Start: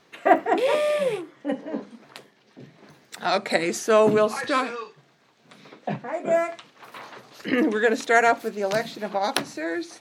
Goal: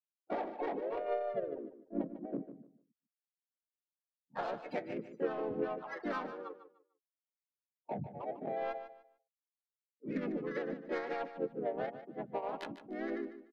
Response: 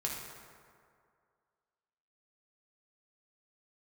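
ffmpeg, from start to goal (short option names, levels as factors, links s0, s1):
-filter_complex "[0:a]afftfilt=real='re*gte(hypot(re,im),0.1)':imag='im*gte(hypot(re,im),0.1)':win_size=1024:overlap=0.75,highpass=140,highshelf=f=9400:g=-11,alimiter=limit=0.224:level=0:latency=1:release=123,acompressor=threshold=0.0501:ratio=20,atempo=0.74,flanger=delay=6.4:depth=1:regen=50:speed=1.9:shape=sinusoidal,adynamicsmooth=sensitivity=1.5:basefreq=920,asplit=4[s0][s1][s2][s3];[s1]asetrate=29433,aresample=44100,atempo=1.49831,volume=0.398[s4];[s2]asetrate=35002,aresample=44100,atempo=1.25992,volume=0.501[s5];[s3]asetrate=52444,aresample=44100,atempo=0.840896,volume=0.631[s6];[s0][s4][s5][s6]amix=inputs=4:normalize=0,asplit=2[s7][s8];[s8]aecho=0:1:149|298|447:0.251|0.0628|0.0157[s9];[s7][s9]amix=inputs=2:normalize=0,adynamicequalizer=threshold=0.00398:dfrequency=1800:dqfactor=0.7:tfrequency=1800:tqfactor=0.7:attack=5:release=100:ratio=0.375:range=2.5:mode=boostabove:tftype=highshelf,volume=0.562"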